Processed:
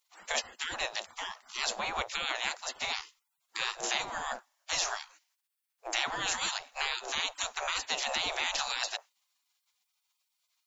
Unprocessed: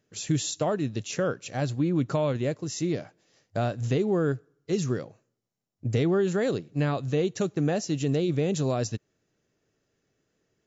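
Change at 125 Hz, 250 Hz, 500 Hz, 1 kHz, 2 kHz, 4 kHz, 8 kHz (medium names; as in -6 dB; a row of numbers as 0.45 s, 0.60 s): -31.5 dB, -26.0 dB, -16.0 dB, +1.0 dB, +6.0 dB, +8.0 dB, no reading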